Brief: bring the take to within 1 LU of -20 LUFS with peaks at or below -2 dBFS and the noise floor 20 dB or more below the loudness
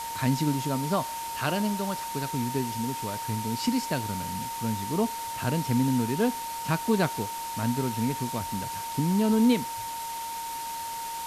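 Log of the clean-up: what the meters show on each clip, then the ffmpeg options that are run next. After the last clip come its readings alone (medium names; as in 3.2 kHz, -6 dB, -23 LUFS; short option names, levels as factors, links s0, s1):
steady tone 920 Hz; tone level -33 dBFS; noise floor -35 dBFS; noise floor target -49 dBFS; loudness -28.5 LUFS; peak level -11.0 dBFS; loudness target -20.0 LUFS
-> -af "bandreject=f=920:w=30"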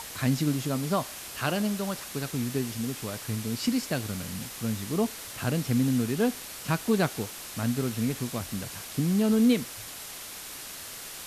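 steady tone not found; noise floor -41 dBFS; noise floor target -50 dBFS
-> -af "afftdn=nr=9:nf=-41"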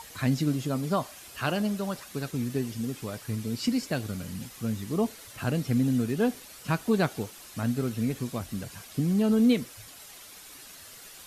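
noise floor -48 dBFS; noise floor target -49 dBFS
-> -af "afftdn=nr=6:nf=-48"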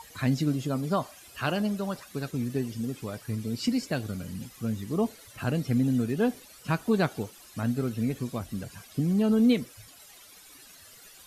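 noise floor -52 dBFS; loudness -29.5 LUFS; peak level -12.0 dBFS; loudness target -20.0 LUFS
-> -af "volume=2.99"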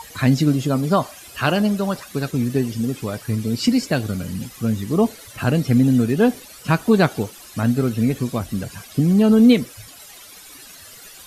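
loudness -20.0 LUFS; peak level -2.5 dBFS; noise floor -42 dBFS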